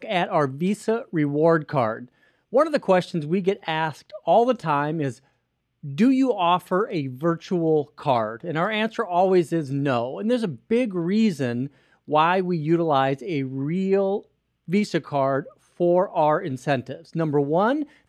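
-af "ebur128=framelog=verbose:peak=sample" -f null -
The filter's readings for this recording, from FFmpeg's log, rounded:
Integrated loudness:
  I:         -23.0 LUFS
  Threshold: -33.3 LUFS
Loudness range:
  LRA:         1.1 LU
  Threshold: -43.4 LUFS
  LRA low:   -24.0 LUFS
  LRA high:  -22.9 LUFS
Sample peak:
  Peak:       -6.3 dBFS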